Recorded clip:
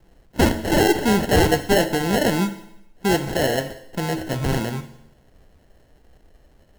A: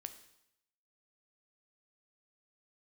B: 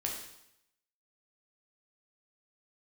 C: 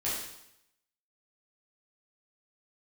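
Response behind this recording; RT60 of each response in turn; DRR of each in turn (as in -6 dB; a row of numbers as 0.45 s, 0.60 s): A; 0.80 s, 0.80 s, 0.80 s; 8.5 dB, -1.0 dB, -9.0 dB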